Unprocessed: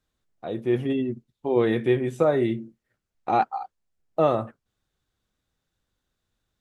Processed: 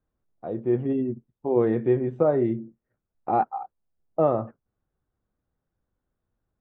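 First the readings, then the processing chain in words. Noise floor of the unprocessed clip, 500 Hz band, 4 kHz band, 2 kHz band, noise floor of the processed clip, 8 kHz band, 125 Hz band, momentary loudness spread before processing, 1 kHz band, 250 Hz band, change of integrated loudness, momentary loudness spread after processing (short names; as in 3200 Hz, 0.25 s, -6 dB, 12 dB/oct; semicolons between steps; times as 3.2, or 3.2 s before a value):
-82 dBFS, 0.0 dB, under -15 dB, -9.0 dB, -83 dBFS, n/a, 0.0 dB, 14 LU, -1.5 dB, 0.0 dB, -0.5 dB, 15 LU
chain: LPF 1100 Hz 12 dB/oct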